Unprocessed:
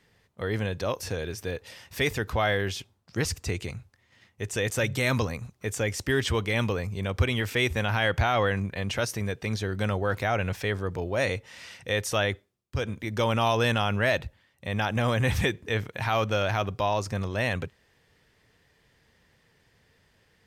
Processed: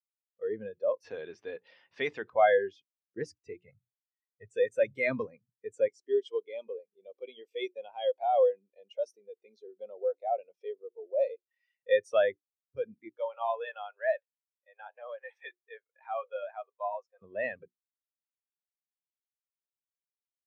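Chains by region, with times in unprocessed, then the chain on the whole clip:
0:01.04–0:02.30: low-pass filter 3,600 Hz + low-shelf EQ 220 Hz +9.5 dB + every bin compressed towards the loudest bin 2 to 1
0:03.63–0:04.49: low-pass filter 2,900 Hz + comb filter 1.5 ms, depth 83%
0:05.88–0:11.51: high-pass filter 390 Hz + parametric band 1,600 Hz −12 dB 1 octave
0:13.09–0:17.22: high-pass filter 480 Hz 24 dB per octave + flanger 2 Hz, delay 6.3 ms, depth 3.8 ms, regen −76%
whole clip: Bessel high-pass filter 260 Hz, order 2; mains-hum notches 60/120/180/240/300/360 Hz; every bin expanded away from the loudest bin 2.5 to 1

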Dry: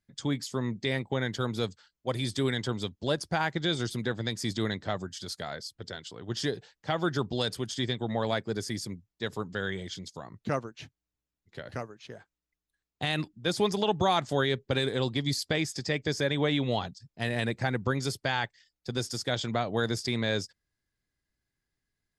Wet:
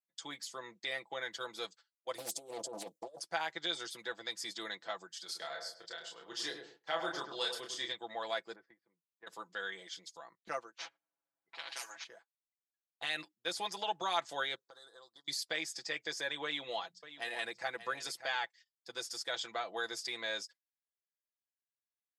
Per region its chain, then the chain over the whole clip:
0:02.18–0:03.20: drawn EQ curve 120 Hz 0 dB, 350 Hz +4 dB, 600 Hz +15 dB, 930 Hz −13 dB, 1,600 Hz −23 dB, 2,800 Hz −19 dB, 7,600 Hz +5 dB + compressor whose output falls as the input rises −32 dBFS + highs frequency-modulated by the lows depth 0.94 ms
0:05.25–0:07.92: double-tracking delay 30 ms −4 dB + feedback echo with a low-pass in the loop 102 ms, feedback 33%, low-pass 1,200 Hz, level −5 dB
0:08.55–0:09.27: low-pass filter 1,800 Hz 24 dB per octave + downward compressor 12 to 1, threshold −37 dBFS
0:10.78–0:12.04: low-pass that shuts in the quiet parts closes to 1,100 Hz, open at −32 dBFS + comb filter 7.3 ms, depth 77% + every bin compressed towards the loudest bin 10 to 1
0:14.55–0:15.28: Chebyshev band-stop filter 1,400–4,200 Hz + low-shelf EQ 480 Hz −9.5 dB + downward compressor 20 to 1, threshold −41 dBFS
0:16.44–0:18.37: mains-hum notches 60/120/180 Hz + single-tap delay 585 ms −13 dB + one half of a high-frequency compander decoder only
whole clip: high-pass filter 680 Hz 12 dB per octave; noise gate −52 dBFS, range −16 dB; comb filter 6 ms, depth 65%; level −6.5 dB

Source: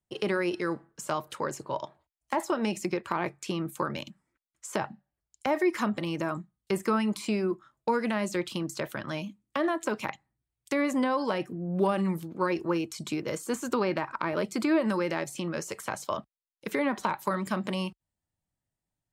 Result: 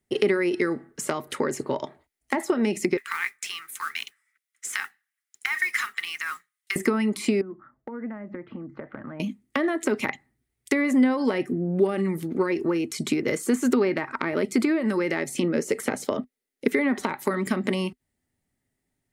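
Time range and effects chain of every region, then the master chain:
0:02.97–0:06.76: inverse Chebyshev high-pass filter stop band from 630 Hz + notch filter 4,500 Hz, Q 17 + noise that follows the level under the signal 18 dB
0:07.41–0:09.20: low-pass filter 1,500 Hz 24 dB per octave + parametric band 390 Hz −12 dB 0.23 octaves + downward compressor 12 to 1, threshold −43 dBFS
0:15.43–0:16.68: notch filter 1,100 Hz, Q 15 + hollow resonant body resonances 250/460 Hz, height 8 dB, ringing for 20 ms
whole clip: notch filter 1,000 Hz, Q 9.3; downward compressor, threshold −32 dBFS; thirty-one-band graphic EQ 250 Hz +11 dB, 400 Hz +10 dB, 2,000 Hz +10 dB, 10,000 Hz +5 dB; level +6.5 dB

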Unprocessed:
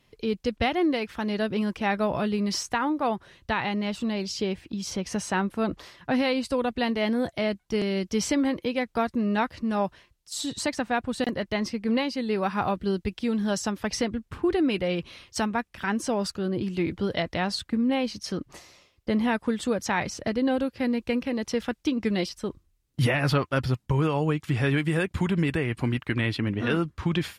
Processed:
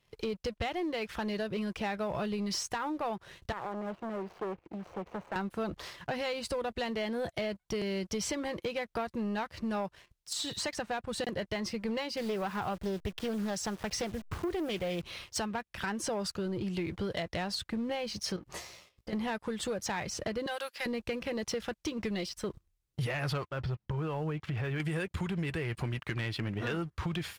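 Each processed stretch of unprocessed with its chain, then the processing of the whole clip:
0:03.52–0:05.36: running median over 25 samples + three-way crossover with the lows and the highs turned down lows −12 dB, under 290 Hz, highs −21 dB, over 2,300 Hz + saturating transformer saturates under 1,300 Hz
0:10.33–0:10.75: one scale factor per block 7 bits + low-pass filter 2,000 Hz 6 dB per octave + tilt shelving filter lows −5 dB, about 1,100 Hz
0:12.17–0:15.02: hold until the input has moved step −42.5 dBFS + highs frequency-modulated by the lows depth 0.22 ms
0:18.36–0:19.13: downward compressor 12 to 1, threshold −37 dBFS + double-tracking delay 17 ms −5 dB
0:20.46–0:20.86: high-pass filter 940 Hz + high-shelf EQ 6,100 Hz +8 dB
0:23.48–0:24.80: downward compressor 2.5 to 1, threshold −32 dBFS + high-frequency loss of the air 210 metres
whole clip: parametric band 260 Hz −15 dB 0.26 octaves; downward compressor, threshold −33 dBFS; leveller curve on the samples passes 2; level −4.5 dB

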